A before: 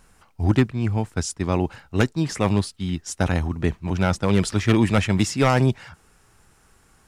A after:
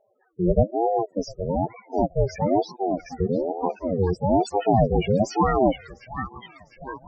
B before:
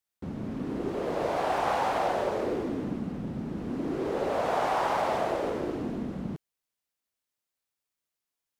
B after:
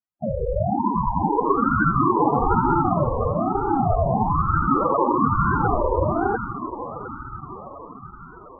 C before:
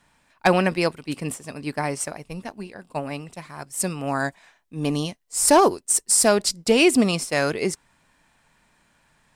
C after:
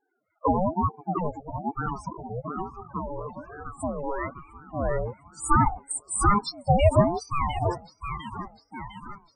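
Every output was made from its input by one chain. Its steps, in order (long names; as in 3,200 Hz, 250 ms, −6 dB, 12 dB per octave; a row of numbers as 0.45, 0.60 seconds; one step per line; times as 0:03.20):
noise gate −51 dBFS, range −7 dB
low-pass that shuts in the quiet parts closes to 1,900 Hz, open at −15.5 dBFS
low-shelf EQ 61 Hz −11.5 dB
in parallel at −3 dB: downward compressor, threshold −30 dBFS
on the sum: spectral peaks only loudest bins 4
on a send: delay with a band-pass on its return 703 ms, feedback 57%, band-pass 1,300 Hz, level −3 dB
on the sum: ring modulator whose carrier an LFO sweeps 440 Hz, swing 40%, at 1.1 Hz
normalise the peak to −6 dBFS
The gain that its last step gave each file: +4.5, +13.5, +1.5 decibels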